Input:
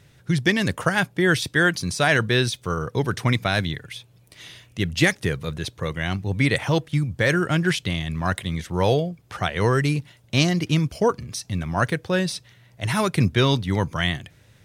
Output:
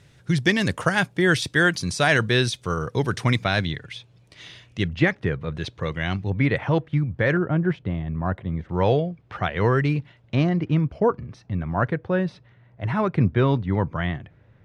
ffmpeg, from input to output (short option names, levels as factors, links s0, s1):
-af "asetnsamples=n=441:p=0,asendcmd='3.42 lowpass f 5500;4.88 lowpass f 2000;5.55 lowpass f 4200;6.3 lowpass f 2000;7.37 lowpass f 1000;8.69 lowpass f 2600;10.35 lowpass f 1500',lowpass=9600"